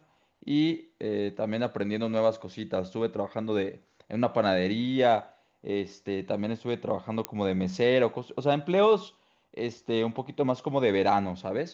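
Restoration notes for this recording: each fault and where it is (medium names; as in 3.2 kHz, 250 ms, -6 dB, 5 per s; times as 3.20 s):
7.25 s: pop -13 dBFS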